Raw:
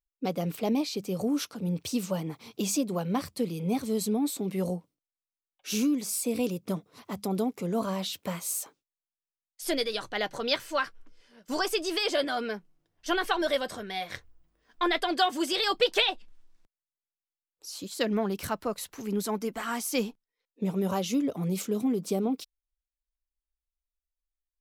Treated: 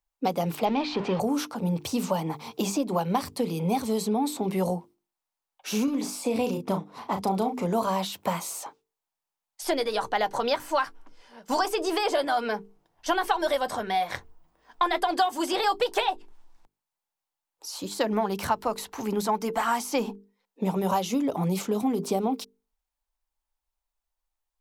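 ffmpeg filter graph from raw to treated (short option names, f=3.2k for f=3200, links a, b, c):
-filter_complex "[0:a]asettb=1/sr,asplit=3[a][b][c];[a]atrim=end=0.654[d];[b]atrim=start=0.65:end=1.2,asetpts=PTS-STARTPTS,afade=t=in:d=0.004:c=qsin,afade=t=out:st=0.546:d=0.004:c=qsin,aeval=exprs='val(0)+0.5*0.015*sgn(val(0))':c=same,lowpass=f=3.3k:w=0.5412,lowpass=f=3.3k:w=1.3066,aemphasis=mode=production:type=75kf[e];[c]atrim=start=1.196[f];[d][e]acrossfade=d=0.004:c1=hsin:c2=qsin[g];[g][f]acrossfade=d=0.004:c1=qsin:c2=hsin,asettb=1/sr,asplit=3[h][i][j];[h]atrim=end=5.844[k];[i]atrim=start=5.84:end=7.66,asetpts=PTS-STARTPTS,afade=t=in:d=0.004:c=qsin,afade=t=out:st=1.816:d=0.004:c=qsin,highshelf=f=6.8k:g=-9.5,asplit=2[l][m];[m]adelay=36,volume=-7dB[n];[l][n]amix=inputs=2:normalize=0,atrim=end_sample=80262[o];[j]atrim=start=7.656[p];[k][o]acrossfade=d=0.004:c1=hsin:c2=qsin[q];[q][p]acrossfade=d=0.004:c1=qsin:c2=hsin,equalizer=f=870:t=o:w=0.77:g=12.5,bandreject=f=50:t=h:w=6,bandreject=f=100:t=h:w=6,bandreject=f=150:t=h:w=6,bandreject=f=200:t=h:w=6,bandreject=f=250:t=h:w=6,bandreject=f=300:t=h:w=6,bandreject=f=350:t=h:w=6,bandreject=f=400:t=h:w=6,bandreject=f=450:t=h:w=6,acrossover=split=90|2100|6500[r][s][t][u];[r]acompressor=threshold=-49dB:ratio=4[v];[s]acompressor=threshold=-28dB:ratio=4[w];[t]acompressor=threshold=-43dB:ratio=4[x];[u]acompressor=threshold=-46dB:ratio=4[y];[v][w][x][y]amix=inputs=4:normalize=0,volume=5dB"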